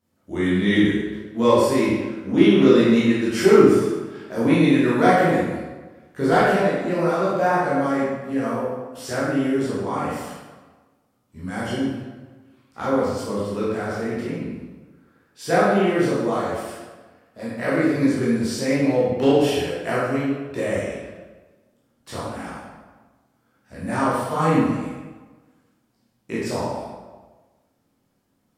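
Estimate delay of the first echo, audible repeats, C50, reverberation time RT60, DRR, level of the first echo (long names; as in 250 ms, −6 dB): no echo audible, no echo audible, −2.0 dB, 1.3 s, −9.5 dB, no echo audible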